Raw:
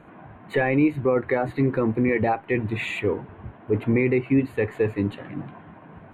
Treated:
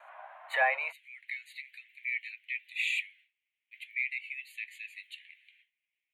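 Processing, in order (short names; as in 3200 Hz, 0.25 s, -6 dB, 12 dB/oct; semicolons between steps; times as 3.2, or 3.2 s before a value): steep high-pass 600 Hz 72 dB/oct, from 0.91 s 2100 Hz; gate with hold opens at -54 dBFS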